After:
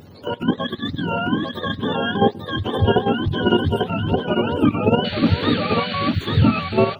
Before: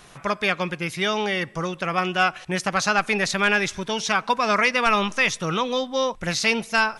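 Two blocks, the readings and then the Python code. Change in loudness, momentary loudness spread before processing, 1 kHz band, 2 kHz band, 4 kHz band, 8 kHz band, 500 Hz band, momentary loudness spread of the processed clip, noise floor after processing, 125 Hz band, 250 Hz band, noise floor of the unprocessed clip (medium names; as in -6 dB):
+2.0 dB, 7 LU, -0.5 dB, -6.5 dB, +0.5 dB, under -25 dB, +4.5 dB, 7 LU, -40 dBFS, +12.5 dB, +9.0 dB, -47 dBFS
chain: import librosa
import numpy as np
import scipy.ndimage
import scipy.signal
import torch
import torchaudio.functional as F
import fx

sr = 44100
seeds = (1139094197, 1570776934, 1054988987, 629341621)

y = fx.octave_mirror(x, sr, pivot_hz=770.0)
y = fx.peak_eq(y, sr, hz=120.0, db=-5.5, octaves=0.26)
y = fx.transient(y, sr, attack_db=-6, sustain_db=-1)
y = fx.level_steps(y, sr, step_db=10)
y = fx.spec_paint(y, sr, seeds[0], shape='noise', start_s=5.04, length_s=1.07, low_hz=1300.0, high_hz=4600.0, level_db=-39.0)
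y = y + 10.0 ** (-4.5 / 20.0) * np.pad(y, (int(846 * sr / 1000.0), 0))[:len(y)]
y = y * 10.0 ** (7.0 / 20.0)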